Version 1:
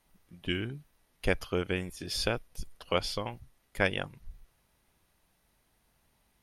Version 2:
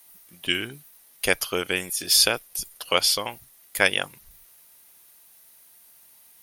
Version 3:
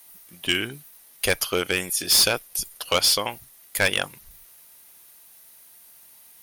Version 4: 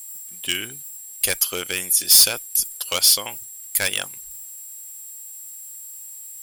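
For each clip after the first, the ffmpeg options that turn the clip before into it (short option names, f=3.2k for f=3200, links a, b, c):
-af "aemphasis=mode=production:type=riaa,volume=7dB"
-af "volume=16dB,asoftclip=hard,volume=-16dB,volume=3dB"
-af "aeval=exprs='val(0)+0.00631*sin(2*PI*7600*n/s)':c=same,crystalizer=i=3.5:c=0,volume=-6.5dB"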